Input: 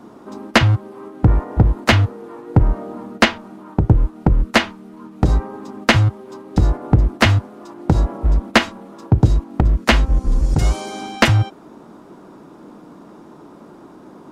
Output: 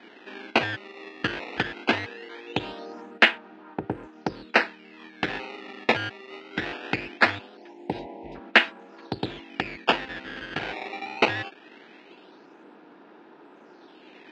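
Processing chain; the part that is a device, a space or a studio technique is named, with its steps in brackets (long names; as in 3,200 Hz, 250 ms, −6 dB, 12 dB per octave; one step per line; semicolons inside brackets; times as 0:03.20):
0:07.57–0:08.35: elliptic band-stop filter 930–2,000 Hz
circuit-bent sampling toy (sample-and-hold swept by an LFO 16×, swing 160% 0.21 Hz; loudspeaker in its box 410–4,100 Hz, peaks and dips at 590 Hz −5 dB, 1,100 Hz −8 dB, 1,700 Hz +6 dB, 2,600 Hz +6 dB)
level −3.5 dB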